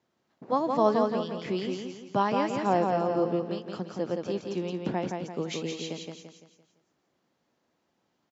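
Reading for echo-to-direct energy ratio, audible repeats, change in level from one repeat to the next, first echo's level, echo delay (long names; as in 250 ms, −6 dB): −3.0 dB, 5, −7.5 dB, −4.0 dB, 170 ms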